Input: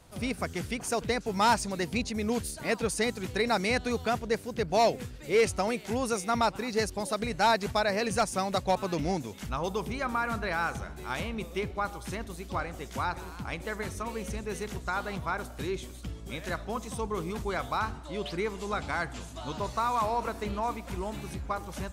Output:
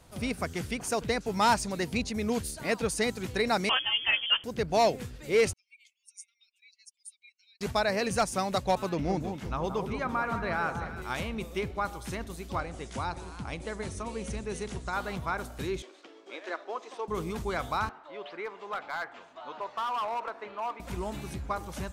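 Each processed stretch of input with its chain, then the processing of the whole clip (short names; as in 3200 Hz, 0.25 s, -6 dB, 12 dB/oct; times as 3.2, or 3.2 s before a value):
3.69–4.44 doubler 15 ms -3 dB + inverted band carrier 3300 Hz
5.53–7.61 spectral contrast raised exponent 2.1 + compressor 3:1, threshold -30 dBFS + rippled Chebyshev high-pass 2200 Hz, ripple 3 dB
8.89–11.02 high shelf 4400 Hz -11 dB + echo with dull and thin repeats by turns 0.175 s, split 1300 Hz, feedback 58%, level -6.5 dB
12.6–14.93 dynamic EQ 1600 Hz, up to -6 dB, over -45 dBFS, Q 1.1 + brick-wall FIR low-pass 11000 Hz
15.82–17.08 CVSD 64 kbps + elliptic high-pass 330 Hz, stop band 80 dB + air absorption 150 m
17.89–20.8 BPF 580–2100 Hz + overloaded stage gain 28 dB
whole clip: dry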